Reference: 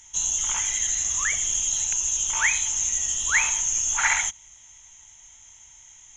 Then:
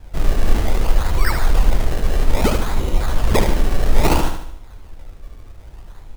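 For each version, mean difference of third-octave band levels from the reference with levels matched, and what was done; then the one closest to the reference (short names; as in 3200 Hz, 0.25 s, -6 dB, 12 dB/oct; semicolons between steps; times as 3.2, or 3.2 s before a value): 15.5 dB: tilt -4.5 dB/oct; decimation with a swept rate 26×, swing 100% 0.61 Hz; feedback echo 74 ms, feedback 47%, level -7 dB; gain +8 dB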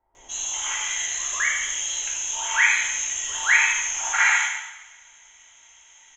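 6.0 dB: three-band isolator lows -19 dB, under 380 Hz, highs -13 dB, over 3800 Hz; bands offset in time lows, highs 0.15 s, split 830 Hz; two-slope reverb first 0.98 s, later 2.9 s, from -27 dB, DRR -5.5 dB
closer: second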